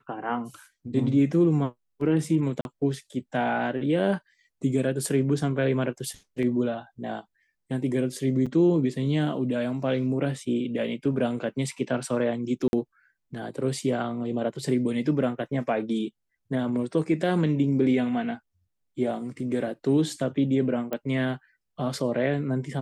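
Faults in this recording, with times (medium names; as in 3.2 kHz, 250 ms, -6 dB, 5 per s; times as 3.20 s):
2.61–2.65 s: dropout 41 ms
8.46–8.47 s: dropout 5.8 ms
12.68–12.73 s: dropout 51 ms
20.93 s: pop -17 dBFS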